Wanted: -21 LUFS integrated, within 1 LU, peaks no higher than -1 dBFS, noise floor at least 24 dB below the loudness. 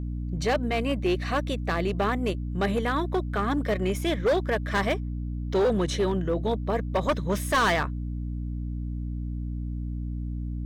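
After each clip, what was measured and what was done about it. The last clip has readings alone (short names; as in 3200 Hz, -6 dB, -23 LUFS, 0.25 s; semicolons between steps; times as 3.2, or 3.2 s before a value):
clipped 1.7%; flat tops at -18.5 dBFS; hum 60 Hz; harmonics up to 300 Hz; hum level -29 dBFS; loudness -27.5 LUFS; peak -18.5 dBFS; loudness target -21.0 LUFS
-> clip repair -18.5 dBFS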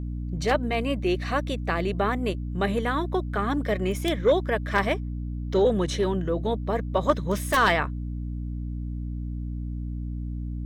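clipped 0.0%; hum 60 Hz; harmonics up to 300 Hz; hum level -29 dBFS
-> notches 60/120/180/240/300 Hz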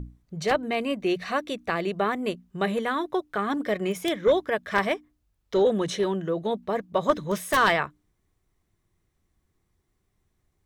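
hum none; loudness -26.5 LUFS; peak -8.5 dBFS; loudness target -21.0 LUFS
-> gain +5.5 dB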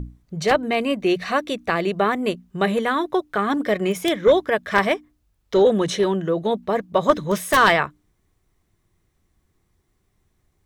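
loudness -21.0 LUFS; peak -3.0 dBFS; noise floor -69 dBFS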